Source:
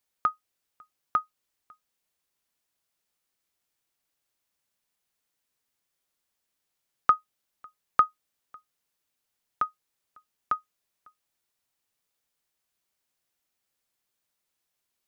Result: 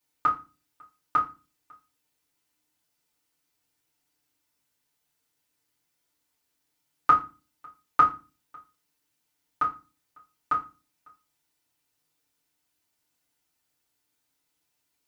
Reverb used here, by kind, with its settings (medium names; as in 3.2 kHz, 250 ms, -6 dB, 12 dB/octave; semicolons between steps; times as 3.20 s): FDN reverb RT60 0.3 s, low-frequency decay 1.6×, high-frequency decay 0.95×, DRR -6.5 dB; trim -3.5 dB